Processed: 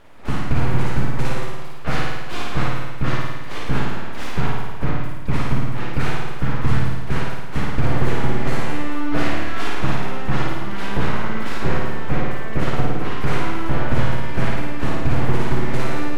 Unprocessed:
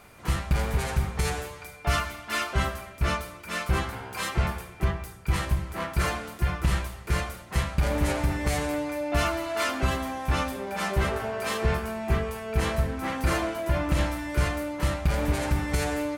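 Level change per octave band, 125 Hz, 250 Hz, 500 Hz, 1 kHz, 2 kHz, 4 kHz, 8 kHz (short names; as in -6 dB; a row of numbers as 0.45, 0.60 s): +5.5, +6.5, +2.0, +3.5, +3.5, +1.5, -5.0 dB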